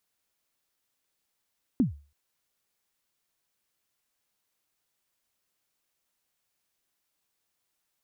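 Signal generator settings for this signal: kick drum length 0.33 s, from 290 Hz, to 72 Hz, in 0.128 s, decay 0.35 s, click off, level -16 dB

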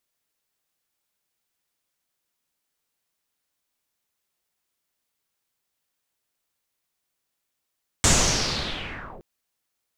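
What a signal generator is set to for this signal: swept filtered noise pink, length 1.17 s lowpass, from 7700 Hz, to 360 Hz, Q 3.8, linear, gain ramp -25 dB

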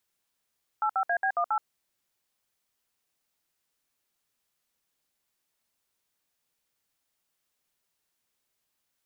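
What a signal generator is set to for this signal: DTMF "85AB18", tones 75 ms, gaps 62 ms, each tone -26 dBFS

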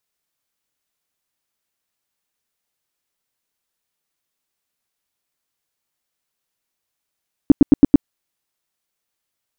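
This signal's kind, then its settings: tone bursts 285 Hz, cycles 5, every 0.11 s, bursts 5, -2.5 dBFS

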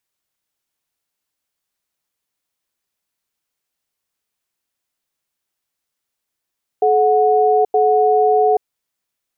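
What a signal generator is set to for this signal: cadence 429 Hz, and 734 Hz, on 0.83 s, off 0.09 s, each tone -13.5 dBFS 1.75 s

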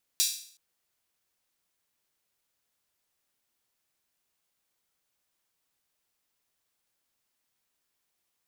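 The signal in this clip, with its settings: open hi-hat length 0.37 s, high-pass 4300 Hz, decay 0.53 s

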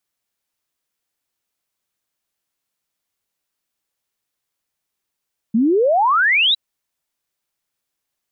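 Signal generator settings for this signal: log sweep 210 Hz -> 4000 Hz 1.01 s -12 dBFS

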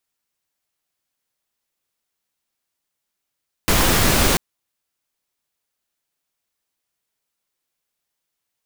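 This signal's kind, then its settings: noise pink, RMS -16 dBFS 0.69 s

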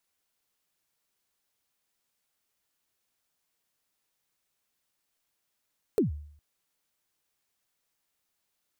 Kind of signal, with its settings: kick drum length 0.41 s, from 480 Hz, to 74 Hz, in 0.13 s, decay 0.62 s, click on, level -18 dB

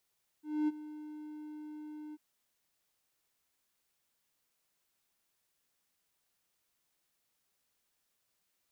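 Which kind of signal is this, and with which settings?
ADSR triangle 303 Hz, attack 0.251 s, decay 27 ms, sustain -16.5 dB, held 1.71 s, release 32 ms -24.5 dBFS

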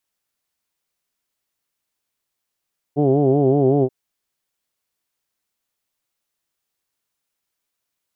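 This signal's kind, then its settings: formant vowel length 0.93 s, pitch 140 Hz, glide -0.5 st, vibrato depth 1.05 st, F1 370 Hz, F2 720 Hz, F3 3100 Hz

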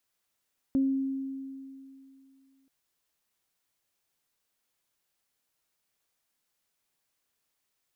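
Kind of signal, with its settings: additive tone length 1.93 s, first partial 269 Hz, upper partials -20 dB, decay 2.62 s, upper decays 0.41 s, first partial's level -21 dB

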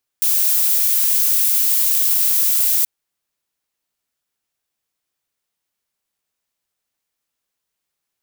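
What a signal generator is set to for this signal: noise violet, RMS -16 dBFS 2.63 s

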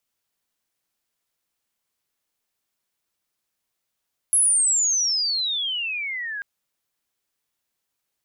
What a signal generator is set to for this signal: chirp logarithmic 11000 Hz -> 1600 Hz -14.5 dBFS -> -28 dBFS 2.09 s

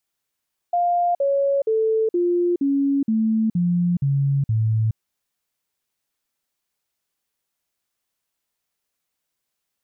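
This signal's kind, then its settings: stepped sine 701 Hz down, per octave 3, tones 9, 0.42 s, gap 0.05 s -16.5 dBFS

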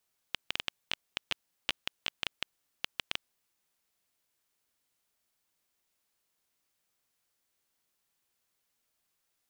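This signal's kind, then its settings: random clicks 7.2/s -12 dBFS 3.24 s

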